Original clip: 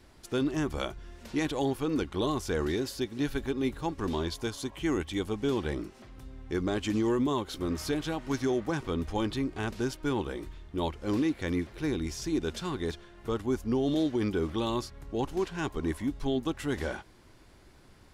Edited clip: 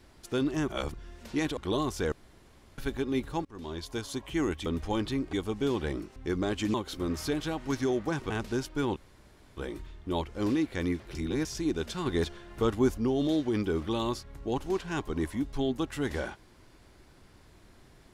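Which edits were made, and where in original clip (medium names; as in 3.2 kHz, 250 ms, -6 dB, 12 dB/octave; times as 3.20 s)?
0.68–0.94 s: reverse
1.57–2.06 s: delete
2.61–3.27 s: room tone
3.94–4.58 s: fade in, from -22.5 dB
5.98–6.41 s: delete
6.99–7.35 s: delete
8.91–9.58 s: move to 5.15 s
10.24 s: insert room tone 0.61 s
11.82–12.12 s: reverse
12.73–13.65 s: gain +4.5 dB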